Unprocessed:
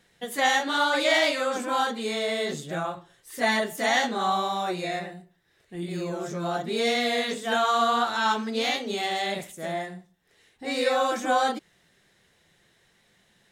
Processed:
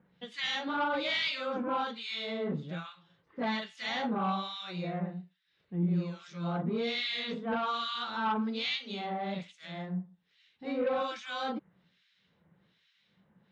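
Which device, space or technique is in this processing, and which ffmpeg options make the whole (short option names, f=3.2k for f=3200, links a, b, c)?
guitar amplifier with harmonic tremolo: -filter_complex "[0:a]acrossover=split=1600[a][b];[a]aeval=exprs='val(0)*(1-1/2+1/2*cos(2*PI*1.2*n/s))':c=same[c];[b]aeval=exprs='val(0)*(1-1/2-1/2*cos(2*PI*1.2*n/s))':c=same[d];[c][d]amix=inputs=2:normalize=0,asoftclip=type=tanh:threshold=-22dB,highpass=77,equalizer=f=180:t=q:w=4:g=9,equalizer=f=380:t=q:w=4:g=-6,equalizer=f=700:t=q:w=4:g=-7,equalizer=f=1.8k:t=q:w=4:g=-7,lowpass=f=4.3k:w=0.5412,lowpass=f=4.3k:w=1.3066"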